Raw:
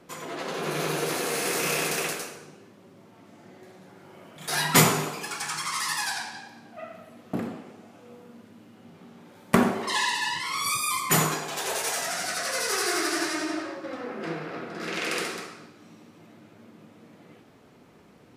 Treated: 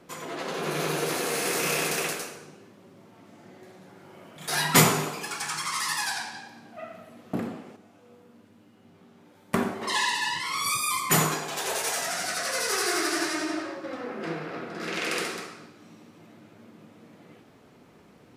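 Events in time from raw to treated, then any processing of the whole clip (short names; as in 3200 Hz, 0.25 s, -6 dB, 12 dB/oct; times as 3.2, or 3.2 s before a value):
7.76–9.82 resonator 99 Hz, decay 0.38 s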